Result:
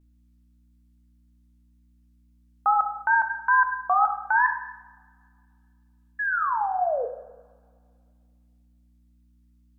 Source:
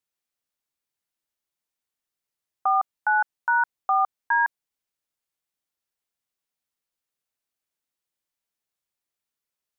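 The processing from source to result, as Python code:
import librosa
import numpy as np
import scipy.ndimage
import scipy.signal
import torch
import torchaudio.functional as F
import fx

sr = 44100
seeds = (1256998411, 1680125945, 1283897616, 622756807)

y = fx.spec_paint(x, sr, seeds[0], shape='fall', start_s=6.18, length_s=0.88, low_hz=480.0, high_hz=1700.0, level_db=-26.0)
y = fx.wow_flutter(y, sr, seeds[1], rate_hz=2.1, depth_cents=140.0)
y = fx.add_hum(y, sr, base_hz=60, snr_db=31)
y = fx.rev_double_slope(y, sr, seeds[2], early_s=0.85, late_s=2.4, knee_db=-23, drr_db=5.0)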